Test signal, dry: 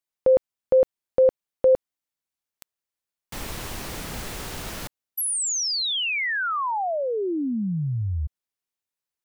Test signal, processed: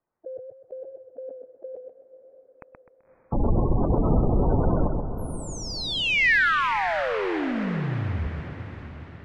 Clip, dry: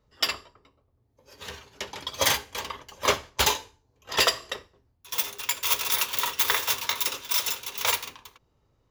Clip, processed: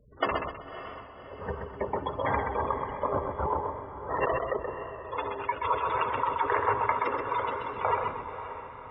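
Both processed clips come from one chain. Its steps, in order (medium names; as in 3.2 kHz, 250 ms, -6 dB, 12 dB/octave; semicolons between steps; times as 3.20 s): in parallel at -1 dB: level held to a coarse grid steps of 13 dB; on the sum: low-pass 1.1 kHz 12 dB/octave; spectral gate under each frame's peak -15 dB strong; compressor with a negative ratio -30 dBFS, ratio -1; echo that smears into a reverb 558 ms, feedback 50%, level -11 dB; modulated delay 128 ms, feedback 35%, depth 55 cents, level -5 dB; trim +4 dB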